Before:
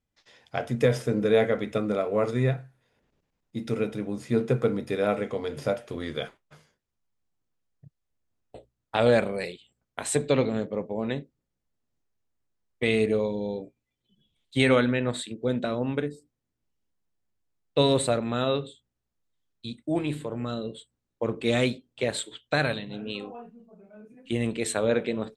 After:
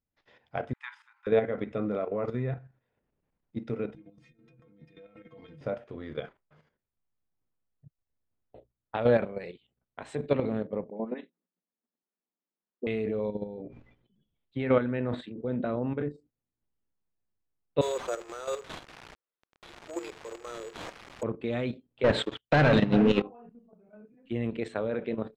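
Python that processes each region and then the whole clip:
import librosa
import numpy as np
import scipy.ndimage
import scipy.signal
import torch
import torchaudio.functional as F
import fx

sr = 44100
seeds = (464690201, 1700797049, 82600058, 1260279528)

y = fx.chain(x, sr, fx.brickwall_highpass(low_hz=820.0),
    fx.peak_eq(hz=5700.0, db=-6.0, octaves=0.32),
    fx.upward_expand(threshold_db=-46.0, expansion=1.5), at=(0.73, 1.27))
y = fx.chain(y, sr, fx.band_shelf(hz=730.0, db=-9.0, octaves=2.4),
    fx.over_compress(threshold_db=-38.0, ratio=-1.0),
    fx.stiff_resonator(f0_hz=160.0, decay_s=0.21, stiffness=0.008), at=(3.95, 5.61))
y = fx.chain(y, sr, fx.cheby1_highpass(hz=170.0, order=10),
    fx.air_absorb(metres=190.0),
    fx.dispersion(late='highs', ms=84.0, hz=1400.0), at=(10.9, 12.87))
y = fx.chain(y, sr, fx.lowpass(hz=2400.0, slope=6),
    fx.sustainer(db_per_s=73.0), at=(13.44, 16.11))
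y = fx.chain(y, sr, fx.crossing_spikes(level_db=-23.5),
    fx.cheby_ripple_highpass(hz=340.0, ripple_db=6),
    fx.resample_bad(factor=6, down='none', up='zero_stuff'), at=(17.81, 21.23))
y = fx.chain(y, sr, fx.high_shelf(hz=8100.0, db=-11.0),
    fx.leveller(passes=5), at=(22.04, 23.22))
y = scipy.signal.sosfilt(scipy.signal.bessel(2, 1900.0, 'lowpass', norm='mag', fs=sr, output='sos'), y)
y = fx.level_steps(y, sr, step_db=10)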